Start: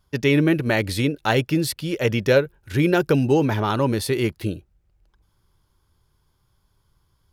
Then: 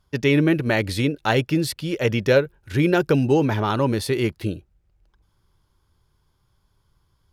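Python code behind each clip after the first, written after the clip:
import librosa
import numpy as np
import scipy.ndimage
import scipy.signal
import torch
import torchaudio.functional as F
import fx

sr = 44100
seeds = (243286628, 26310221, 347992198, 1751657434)

y = fx.high_shelf(x, sr, hz=11000.0, db=-7.0)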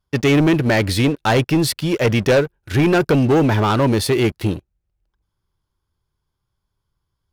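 y = fx.leveller(x, sr, passes=3)
y = y * 10.0 ** (-4.0 / 20.0)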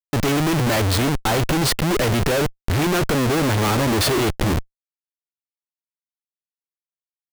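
y = fx.schmitt(x, sr, flips_db=-27.5)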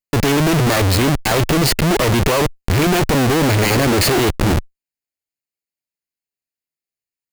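y = fx.lower_of_two(x, sr, delay_ms=0.43)
y = y * 10.0 ** (4.5 / 20.0)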